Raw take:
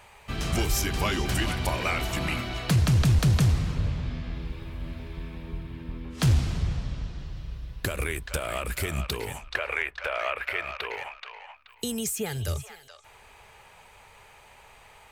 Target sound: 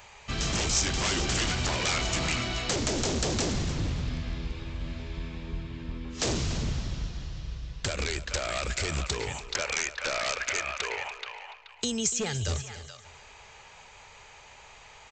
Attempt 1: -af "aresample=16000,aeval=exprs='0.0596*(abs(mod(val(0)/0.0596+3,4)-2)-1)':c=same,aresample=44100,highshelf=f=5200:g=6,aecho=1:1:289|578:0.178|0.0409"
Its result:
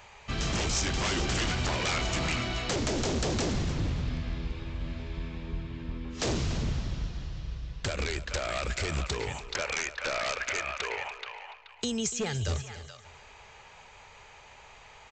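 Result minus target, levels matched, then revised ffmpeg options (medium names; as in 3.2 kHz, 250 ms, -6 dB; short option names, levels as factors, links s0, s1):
8 kHz band -3.5 dB
-af "aresample=16000,aeval=exprs='0.0596*(abs(mod(val(0)/0.0596+3,4)-2)-1)':c=same,aresample=44100,highshelf=f=5200:g=14,aecho=1:1:289|578:0.178|0.0409"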